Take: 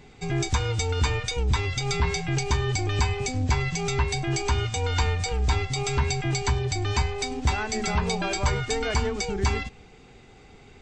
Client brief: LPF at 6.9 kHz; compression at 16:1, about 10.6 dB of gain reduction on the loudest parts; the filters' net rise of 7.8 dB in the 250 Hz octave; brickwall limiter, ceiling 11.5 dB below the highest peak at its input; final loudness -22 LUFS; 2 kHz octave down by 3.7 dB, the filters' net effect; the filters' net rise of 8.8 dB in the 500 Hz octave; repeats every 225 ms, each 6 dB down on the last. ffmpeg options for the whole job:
-af "lowpass=6900,equalizer=f=250:t=o:g=8.5,equalizer=f=500:t=o:g=8,equalizer=f=2000:t=o:g=-5,acompressor=threshold=0.0447:ratio=16,alimiter=level_in=2:limit=0.0631:level=0:latency=1,volume=0.501,aecho=1:1:225|450|675|900|1125|1350:0.501|0.251|0.125|0.0626|0.0313|0.0157,volume=5.62"

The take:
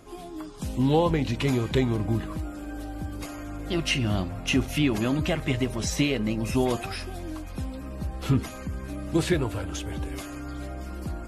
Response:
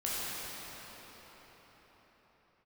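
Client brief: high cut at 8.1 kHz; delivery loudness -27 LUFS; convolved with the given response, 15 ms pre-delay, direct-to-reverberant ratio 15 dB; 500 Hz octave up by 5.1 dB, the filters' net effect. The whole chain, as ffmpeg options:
-filter_complex "[0:a]lowpass=8100,equalizer=f=500:t=o:g=6.5,asplit=2[s0][s1];[1:a]atrim=start_sample=2205,adelay=15[s2];[s1][s2]afir=irnorm=-1:irlink=0,volume=0.075[s3];[s0][s3]amix=inputs=2:normalize=0,volume=0.891"

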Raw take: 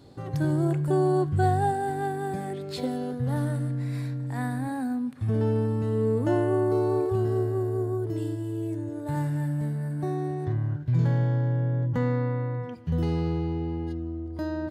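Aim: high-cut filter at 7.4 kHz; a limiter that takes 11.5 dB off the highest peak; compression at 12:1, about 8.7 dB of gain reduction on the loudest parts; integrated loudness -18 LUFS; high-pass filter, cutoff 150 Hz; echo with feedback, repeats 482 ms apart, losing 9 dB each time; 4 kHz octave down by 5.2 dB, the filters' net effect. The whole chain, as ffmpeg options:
-af "highpass=150,lowpass=7400,equalizer=f=4000:t=o:g=-6,acompressor=threshold=0.0355:ratio=12,alimiter=level_in=2.24:limit=0.0631:level=0:latency=1,volume=0.447,aecho=1:1:482|964|1446|1928:0.355|0.124|0.0435|0.0152,volume=9.44"

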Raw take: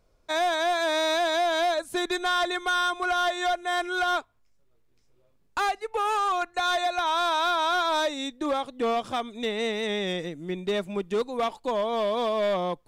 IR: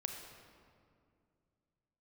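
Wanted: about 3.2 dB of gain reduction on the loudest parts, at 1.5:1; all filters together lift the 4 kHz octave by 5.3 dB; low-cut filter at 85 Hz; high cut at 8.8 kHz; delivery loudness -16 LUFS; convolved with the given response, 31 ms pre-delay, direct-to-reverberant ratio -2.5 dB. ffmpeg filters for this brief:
-filter_complex "[0:a]highpass=85,lowpass=8800,equalizer=f=4000:t=o:g=6,acompressor=threshold=0.0316:ratio=1.5,asplit=2[s0][s1];[1:a]atrim=start_sample=2205,adelay=31[s2];[s1][s2]afir=irnorm=-1:irlink=0,volume=1.41[s3];[s0][s3]amix=inputs=2:normalize=0,volume=2.37"

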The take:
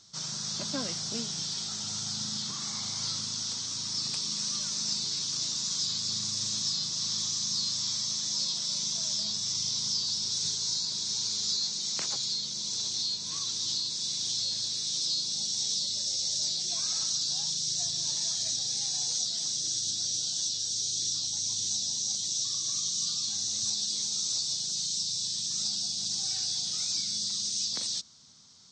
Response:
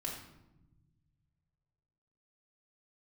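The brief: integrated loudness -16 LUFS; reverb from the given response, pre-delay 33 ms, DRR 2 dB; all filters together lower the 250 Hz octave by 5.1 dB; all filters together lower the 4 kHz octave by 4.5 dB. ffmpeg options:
-filter_complex "[0:a]equalizer=f=250:t=o:g=-7,equalizer=f=4000:t=o:g=-6,asplit=2[s0][s1];[1:a]atrim=start_sample=2205,adelay=33[s2];[s1][s2]afir=irnorm=-1:irlink=0,volume=0.75[s3];[s0][s3]amix=inputs=2:normalize=0,volume=5.31"

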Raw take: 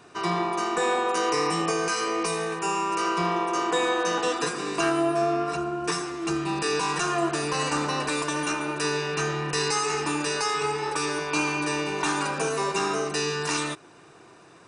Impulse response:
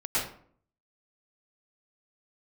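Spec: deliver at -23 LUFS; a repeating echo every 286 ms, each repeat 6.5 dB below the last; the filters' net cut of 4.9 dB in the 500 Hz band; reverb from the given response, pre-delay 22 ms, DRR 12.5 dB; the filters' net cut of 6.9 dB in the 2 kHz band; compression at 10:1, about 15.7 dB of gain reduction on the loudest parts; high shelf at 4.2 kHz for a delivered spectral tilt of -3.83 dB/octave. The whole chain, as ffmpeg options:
-filter_complex "[0:a]equalizer=f=500:t=o:g=-6,equalizer=f=2000:t=o:g=-8.5,highshelf=f=4200:g=-3,acompressor=threshold=0.00891:ratio=10,aecho=1:1:286|572|858|1144|1430|1716:0.473|0.222|0.105|0.0491|0.0231|0.0109,asplit=2[s0][s1];[1:a]atrim=start_sample=2205,adelay=22[s2];[s1][s2]afir=irnorm=-1:irlink=0,volume=0.0794[s3];[s0][s3]amix=inputs=2:normalize=0,volume=9.44"

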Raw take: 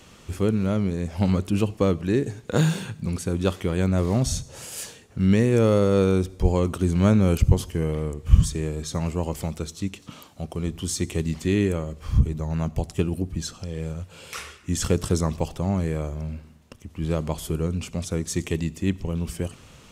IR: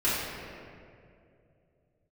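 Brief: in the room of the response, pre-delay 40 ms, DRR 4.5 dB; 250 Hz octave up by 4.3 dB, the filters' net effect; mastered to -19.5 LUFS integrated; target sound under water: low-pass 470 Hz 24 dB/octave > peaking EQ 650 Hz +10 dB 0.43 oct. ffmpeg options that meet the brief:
-filter_complex "[0:a]equalizer=f=250:t=o:g=6,asplit=2[s0][s1];[1:a]atrim=start_sample=2205,adelay=40[s2];[s1][s2]afir=irnorm=-1:irlink=0,volume=0.141[s3];[s0][s3]amix=inputs=2:normalize=0,lowpass=f=470:w=0.5412,lowpass=f=470:w=1.3066,equalizer=f=650:t=o:w=0.43:g=10,volume=1.12"

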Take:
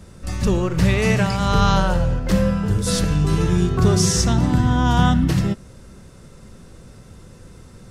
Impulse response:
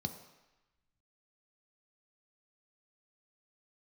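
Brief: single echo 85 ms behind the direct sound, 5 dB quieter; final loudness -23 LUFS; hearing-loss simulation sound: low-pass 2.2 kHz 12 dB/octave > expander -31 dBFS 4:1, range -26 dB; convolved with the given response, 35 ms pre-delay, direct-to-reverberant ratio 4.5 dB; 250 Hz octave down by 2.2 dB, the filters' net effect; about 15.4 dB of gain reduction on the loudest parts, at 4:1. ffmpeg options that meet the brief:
-filter_complex "[0:a]equalizer=f=250:t=o:g=-3.5,acompressor=threshold=0.0282:ratio=4,aecho=1:1:85:0.562,asplit=2[s0][s1];[1:a]atrim=start_sample=2205,adelay=35[s2];[s1][s2]afir=irnorm=-1:irlink=0,volume=0.596[s3];[s0][s3]amix=inputs=2:normalize=0,lowpass=2200,agate=range=0.0501:threshold=0.0282:ratio=4,volume=1.33"

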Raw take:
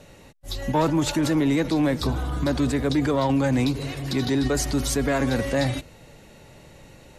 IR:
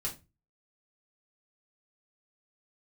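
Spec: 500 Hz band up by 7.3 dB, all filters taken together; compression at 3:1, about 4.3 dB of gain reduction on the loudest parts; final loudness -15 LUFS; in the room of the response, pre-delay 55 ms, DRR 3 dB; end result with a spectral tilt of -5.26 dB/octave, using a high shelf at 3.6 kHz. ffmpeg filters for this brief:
-filter_complex "[0:a]equalizer=f=500:t=o:g=8.5,highshelf=f=3600:g=7.5,acompressor=threshold=0.112:ratio=3,asplit=2[s0][s1];[1:a]atrim=start_sample=2205,adelay=55[s2];[s1][s2]afir=irnorm=-1:irlink=0,volume=0.596[s3];[s0][s3]amix=inputs=2:normalize=0,volume=2"

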